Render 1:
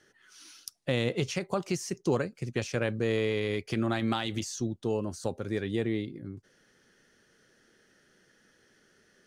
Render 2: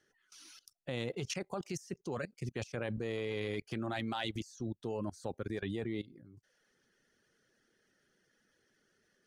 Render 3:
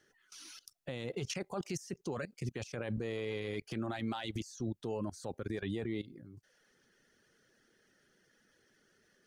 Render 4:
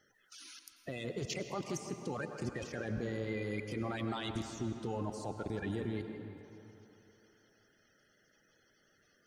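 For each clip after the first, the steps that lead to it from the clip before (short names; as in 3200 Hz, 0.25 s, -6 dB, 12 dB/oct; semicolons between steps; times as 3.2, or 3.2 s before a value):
reverb removal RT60 0.57 s; dynamic EQ 800 Hz, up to +4 dB, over -46 dBFS, Q 2.5; level quantiser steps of 19 dB; gain +1 dB
limiter -32.5 dBFS, peak gain reduction 10 dB; gain +4 dB
bin magnitudes rounded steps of 30 dB; narrowing echo 0.162 s, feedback 70%, band-pass 850 Hz, level -9 dB; reverb RT60 3.3 s, pre-delay 84 ms, DRR 8 dB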